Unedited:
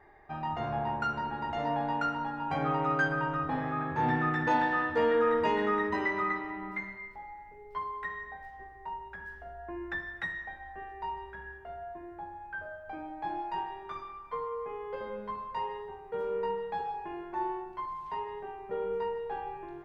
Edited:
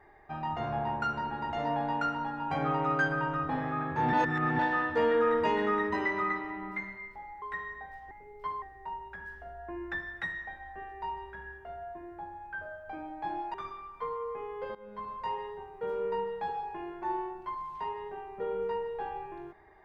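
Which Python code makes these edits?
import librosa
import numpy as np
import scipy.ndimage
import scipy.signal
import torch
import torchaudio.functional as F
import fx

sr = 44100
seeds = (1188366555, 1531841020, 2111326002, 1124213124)

y = fx.edit(x, sr, fx.reverse_span(start_s=4.13, length_s=0.46),
    fx.move(start_s=7.42, length_s=0.51, to_s=8.62),
    fx.cut(start_s=13.54, length_s=0.31),
    fx.fade_in_from(start_s=15.06, length_s=0.37, floor_db=-17.5), tone=tone)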